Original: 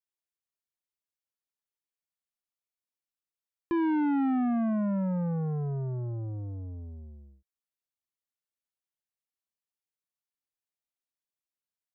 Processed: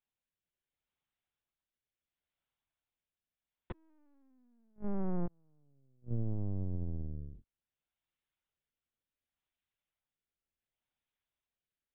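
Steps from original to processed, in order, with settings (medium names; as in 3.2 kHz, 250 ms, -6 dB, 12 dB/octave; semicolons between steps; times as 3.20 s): compression 5:1, threshold -37 dBFS, peak gain reduction 9.5 dB; rotary cabinet horn 0.7 Hz; inverted gate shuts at -36 dBFS, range -38 dB; LPC vocoder at 8 kHz pitch kept; trim +7.5 dB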